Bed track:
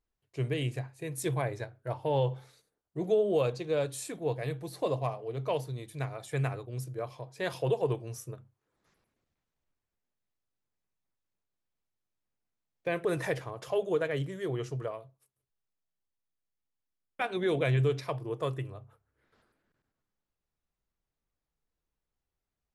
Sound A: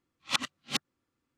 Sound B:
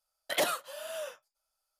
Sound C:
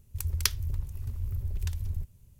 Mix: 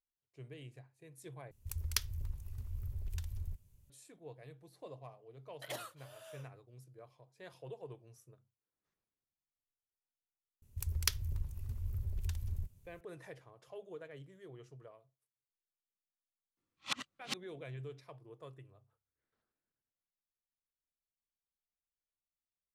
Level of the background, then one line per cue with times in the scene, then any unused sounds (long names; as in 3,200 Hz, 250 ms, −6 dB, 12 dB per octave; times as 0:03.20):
bed track −19 dB
0:01.51: overwrite with C −7.5 dB + parametric band 210 Hz −3.5 dB 2.5 octaves
0:05.32: mix in B −15 dB
0:10.62: mix in C −6 dB
0:16.57: mix in A −9 dB